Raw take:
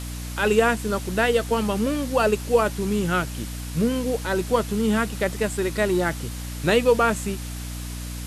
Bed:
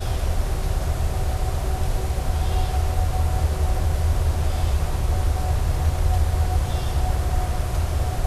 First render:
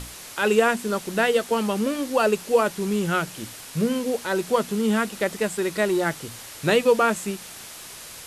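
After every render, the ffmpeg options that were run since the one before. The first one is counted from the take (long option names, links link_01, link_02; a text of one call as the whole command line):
ffmpeg -i in.wav -af "bandreject=frequency=60:width_type=h:width=6,bandreject=frequency=120:width_type=h:width=6,bandreject=frequency=180:width_type=h:width=6,bandreject=frequency=240:width_type=h:width=6,bandreject=frequency=300:width_type=h:width=6" out.wav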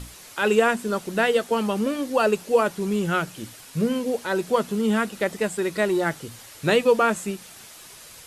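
ffmpeg -i in.wav -af "afftdn=noise_reduction=6:noise_floor=-41" out.wav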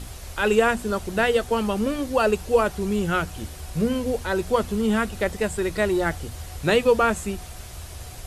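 ffmpeg -i in.wav -i bed.wav -filter_complex "[1:a]volume=-16dB[link_01];[0:a][link_01]amix=inputs=2:normalize=0" out.wav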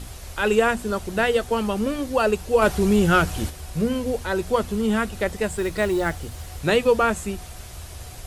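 ffmpeg -i in.wav -filter_complex "[0:a]asplit=3[link_01][link_02][link_03];[link_01]afade=type=out:start_time=2.61:duration=0.02[link_04];[link_02]aeval=exprs='0.335*sin(PI/2*1.41*val(0)/0.335)':channel_layout=same,afade=type=in:start_time=2.61:duration=0.02,afade=type=out:start_time=3.49:duration=0.02[link_05];[link_03]afade=type=in:start_time=3.49:duration=0.02[link_06];[link_04][link_05][link_06]amix=inputs=3:normalize=0,asettb=1/sr,asplit=3[link_07][link_08][link_09];[link_07]atrim=end=5.484[link_10];[link_08]atrim=start=5.48:end=6.59,asetpts=PTS-STARTPTS,afade=type=in:duration=0.004:curve=qsin,afade=type=out:start_time=1.106:duration=0.004:curve=qsin,acrusher=bits=7:mode=log:mix=0:aa=0.000001[link_11];[link_09]atrim=start=6.586[link_12];[link_10][link_11]acrossfade=duration=0.004:curve1=hsin:curve2=qsin[link_13];[link_13][link_12]acrossfade=duration=0.004:curve1=qsin:curve2=hsin" out.wav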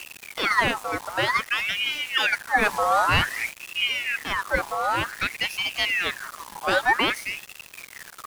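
ffmpeg -i in.wav -af "aeval=exprs='val(0)*gte(abs(val(0)),0.02)':channel_layout=same,aeval=exprs='val(0)*sin(2*PI*1800*n/s+1800*0.5/0.53*sin(2*PI*0.53*n/s))':channel_layout=same" out.wav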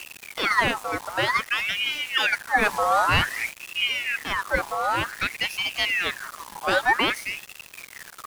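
ffmpeg -i in.wav -af anull out.wav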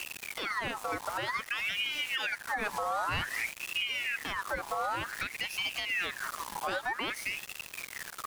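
ffmpeg -i in.wav -af "acompressor=threshold=-25dB:ratio=6,alimiter=limit=-22.5dB:level=0:latency=1:release=203" out.wav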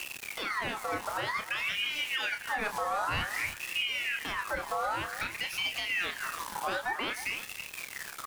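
ffmpeg -i in.wav -filter_complex "[0:a]asplit=2[link_01][link_02];[link_02]adelay=30,volume=-8dB[link_03];[link_01][link_03]amix=inputs=2:normalize=0,aecho=1:1:315:0.211" out.wav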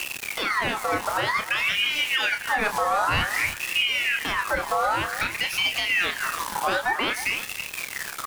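ffmpeg -i in.wav -af "volume=8.5dB" out.wav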